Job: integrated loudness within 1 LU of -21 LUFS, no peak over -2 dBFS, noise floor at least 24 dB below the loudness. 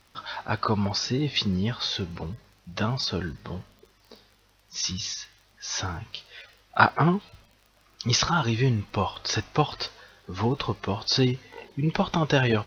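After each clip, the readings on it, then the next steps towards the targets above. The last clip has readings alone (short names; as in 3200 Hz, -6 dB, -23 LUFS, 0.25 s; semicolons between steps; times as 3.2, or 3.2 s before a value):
ticks 31/s; loudness -26.5 LUFS; peak -4.5 dBFS; loudness target -21.0 LUFS
-> de-click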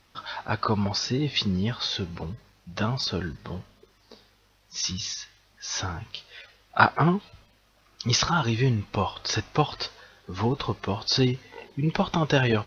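ticks 0/s; loudness -26.5 LUFS; peak -4.5 dBFS; loudness target -21.0 LUFS
-> gain +5.5 dB; limiter -2 dBFS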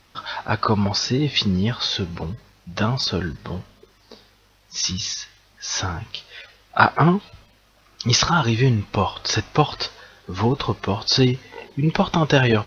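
loudness -21.5 LUFS; peak -2.0 dBFS; noise floor -57 dBFS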